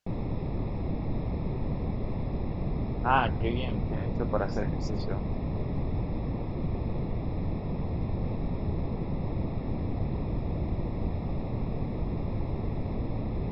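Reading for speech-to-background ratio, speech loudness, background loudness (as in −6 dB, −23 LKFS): 0.5 dB, −32.5 LKFS, −33.0 LKFS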